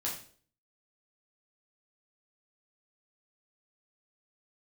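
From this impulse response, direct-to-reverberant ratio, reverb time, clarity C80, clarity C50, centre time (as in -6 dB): -4.5 dB, 0.50 s, 10.5 dB, 6.0 dB, 31 ms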